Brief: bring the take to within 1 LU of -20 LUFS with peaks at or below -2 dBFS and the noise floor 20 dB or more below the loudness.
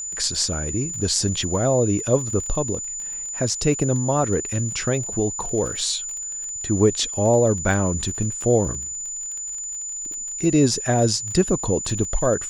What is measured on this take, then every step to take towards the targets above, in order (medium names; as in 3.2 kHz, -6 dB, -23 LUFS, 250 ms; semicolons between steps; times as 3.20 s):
tick rate 29 per s; steady tone 7 kHz; tone level -28 dBFS; loudness -22.0 LUFS; peak level -4.5 dBFS; loudness target -20.0 LUFS
-> de-click; band-stop 7 kHz, Q 30; trim +2 dB